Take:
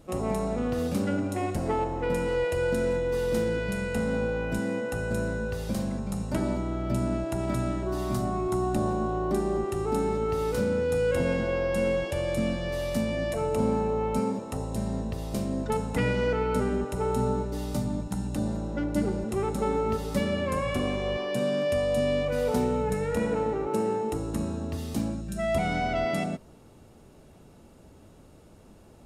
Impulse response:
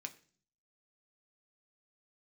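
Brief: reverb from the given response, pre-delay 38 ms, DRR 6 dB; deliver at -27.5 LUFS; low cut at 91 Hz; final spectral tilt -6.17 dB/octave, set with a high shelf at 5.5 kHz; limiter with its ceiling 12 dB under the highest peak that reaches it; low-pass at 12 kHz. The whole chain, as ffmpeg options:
-filter_complex "[0:a]highpass=91,lowpass=12000,highshelf=f=5500:g=-8.5,alimiter=level_in=1.26:limit=0.0631:level=0:latency=1,volume=0.794,asplit=2[s0][s1];[1:a]atrim=start_sample=2205,adelay=38[s2];[s1][s2]afir=irnorm=-1:irlink=0,volume=0.708[s3];[s0][s3]amix=inputs=2:normalize=0,volume=2"

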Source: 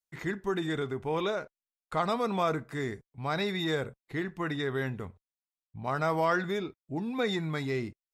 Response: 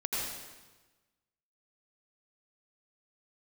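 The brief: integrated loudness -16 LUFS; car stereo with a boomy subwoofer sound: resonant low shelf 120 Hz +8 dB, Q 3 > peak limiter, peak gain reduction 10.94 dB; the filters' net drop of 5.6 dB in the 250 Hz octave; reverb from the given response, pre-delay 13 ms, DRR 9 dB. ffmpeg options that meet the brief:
-filter_complex "[0:a]equalizer=f=250:t=o:g=-5,asplit=2[s0][s1];[1:a]atrim=start_sample=2205,adelay=13[s2];[s1][s2]afir=irnorm=-1:irlink=0,volume=0.178[s3];[s0][s3]amix=inputs=2:normalize=0,lowshelf=f=120:t=q:w=3:g=8,volume=11.2,alimiter=limit=0.531:level=0:latency=1"

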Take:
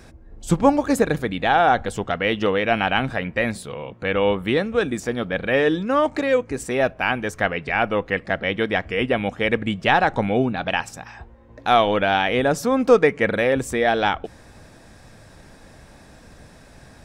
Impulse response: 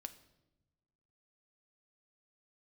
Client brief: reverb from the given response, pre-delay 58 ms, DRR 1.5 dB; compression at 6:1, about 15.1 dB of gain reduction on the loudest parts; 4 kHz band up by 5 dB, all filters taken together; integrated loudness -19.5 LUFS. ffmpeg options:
-filter_complex "[0:a]equalizer=f=4000:t=o:g=7,acompressor=threshold=0.0501:ratio=6,asplit=2[s0][s1];[1:a]atrim=start_sample=2205,adelay=58[s2];[s1][s2]afir=irnorm=-1:irlink=0,volume=1.41[s3];[s0][s3]amix=inputs=2:normalize=0,volume=2.51"

